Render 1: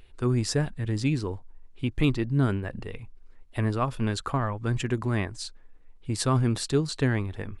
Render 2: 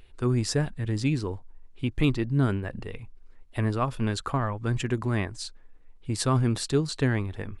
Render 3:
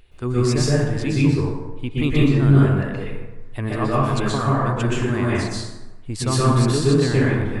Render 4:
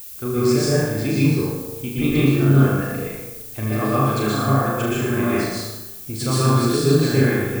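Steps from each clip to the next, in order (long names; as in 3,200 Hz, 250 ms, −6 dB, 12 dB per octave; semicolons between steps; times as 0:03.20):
no processing that can be heard
dense smooth reverb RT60 1.1 s, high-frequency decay 0.55×, pre-delay 110 ms, DRR −7 dB
notch comb filter 950 Hz; on a send: flutter between parallel walls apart 6.4 metres, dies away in 0.67 s; on the sum: background noise violet −36 dBFS; level −1 dB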